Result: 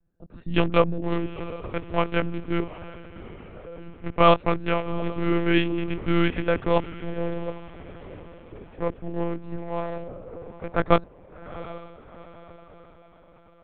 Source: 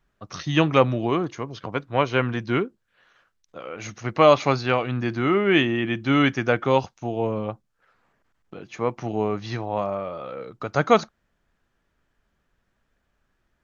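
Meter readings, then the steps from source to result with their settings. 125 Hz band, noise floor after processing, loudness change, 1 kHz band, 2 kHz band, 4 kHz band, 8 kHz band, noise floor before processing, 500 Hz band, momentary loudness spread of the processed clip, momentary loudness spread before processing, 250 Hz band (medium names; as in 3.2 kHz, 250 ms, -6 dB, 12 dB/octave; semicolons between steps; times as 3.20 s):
-2.5 dB, -53 dBFS, -3.0 dB, -2.5 dB, -4.5 dB, -4.0 dB, no reading, -73 dBFS, -3.0 dB, 21 LU, 15 LU, -2.0 dB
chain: local Wiener filter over 41 samples; echo that smears into a reverb 739 ms, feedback 46%, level -15 dB; monotone LPC vocoder at 8 kHz 170 Hz; trim -1 dB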